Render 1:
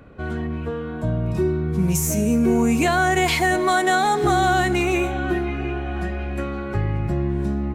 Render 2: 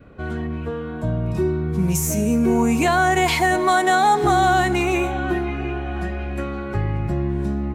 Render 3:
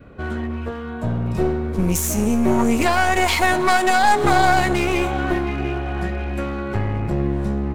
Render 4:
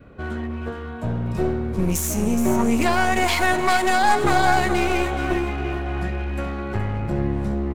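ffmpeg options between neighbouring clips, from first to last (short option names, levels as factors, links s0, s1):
-af "adynamicequalizer=threshold=0.0158:dfrequency=910:dqfactor=2.9:tfrequency=910:tqfactor=2.9:attack=5:release=100:ratio=0.375:range=3:mode=boostabove:tftype=bell"
-af "aeval=exprs='clip(val(0),-1,0.0596)':c=same,bandreject=f=155.8:t=h:w=4,bandreject=f=311.6:t=h:w=4,bandreject=f=467.4:t=h:w=4,bandreject=f=623.2:t=h:w=4,bandreject=f=779:t=h:w=4,aeval=exprs='0.398*(cos(1*acos(clip(val(0)/0.398,-1,1)))-cos(1*PI/2))+0.0447*(cos(3*acos(clip(val(0)/0.398,-1,1)))-cos(3*PI/2))':c=same,volume=2"
-af "aecho=1:1:421:0.335,volume=0.75"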